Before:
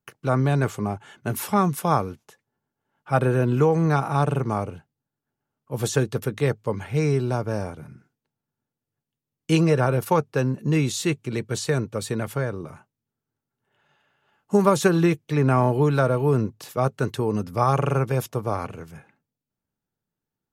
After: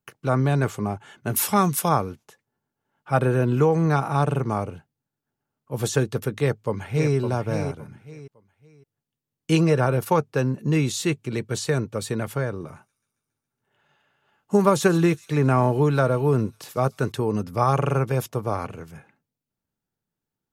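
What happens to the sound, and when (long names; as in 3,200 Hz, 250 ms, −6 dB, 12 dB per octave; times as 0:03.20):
0:01.36–0:01.89: high-shelf EQ 2,600 Hz +9 dB
0:06.38–0:07.15: delay throw 560 ms, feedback 25%, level −7.5 dB
0:12.47–0:17.12: delay with a high-pass on its return 138 ms, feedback 66%, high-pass 4,800 Hz, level −13.5 dB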